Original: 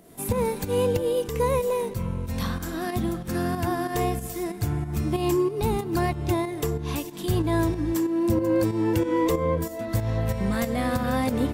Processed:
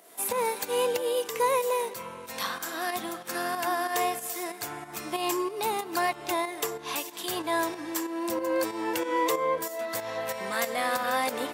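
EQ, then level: HPF 680 Hz 12 dB/oct; +3.5 dB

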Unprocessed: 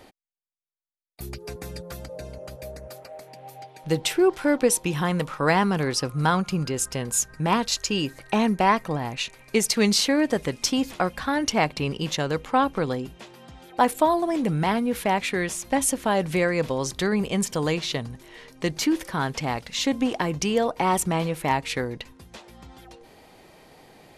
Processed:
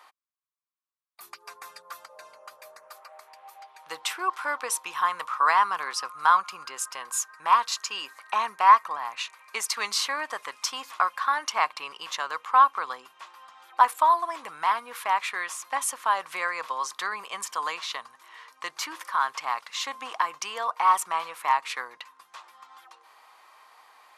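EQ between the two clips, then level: resonant high-pass 1100 Hz, resonance Q 5.9; -5.0 dB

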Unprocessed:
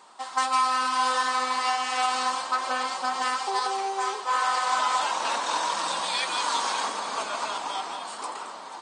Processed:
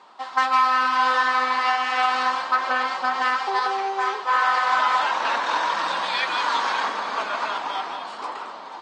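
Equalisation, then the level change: dynamic EQ 1700 Hz, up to +6 dB, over -40 dBFS, Q 1.7; BPF 130–4700 Hz; air absorption 56 m; +3.0 dB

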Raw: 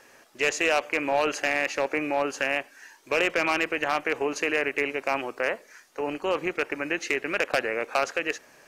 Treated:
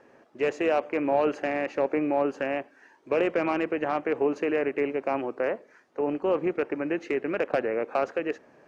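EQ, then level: band-pass 250 Hz, Q 0.55; +4.5 dB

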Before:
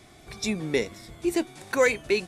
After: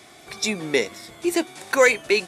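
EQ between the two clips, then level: HPF 450 Hz 6 dB/oct; +7.0 dB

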